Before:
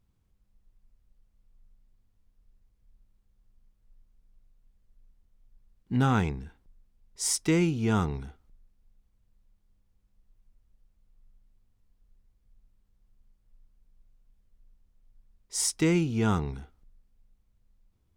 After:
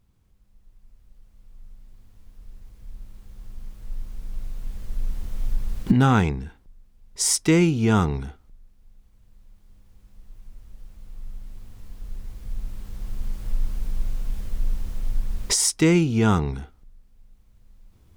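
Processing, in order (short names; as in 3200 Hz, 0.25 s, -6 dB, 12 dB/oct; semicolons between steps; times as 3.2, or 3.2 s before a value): recorder AGC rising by 5.5 dB/s; gain +6.5 dB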